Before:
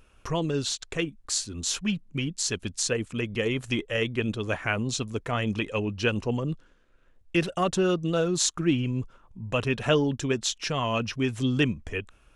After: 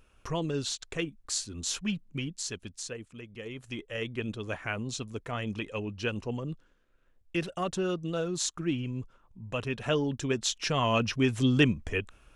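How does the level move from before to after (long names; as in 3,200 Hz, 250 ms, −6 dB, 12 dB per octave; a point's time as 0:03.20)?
0:02.11 −4 dB
0:03.27 −16 dB
0:04.11 −6.5 dB
0:09.78 −6.5 dB
0:10.87 +1 dB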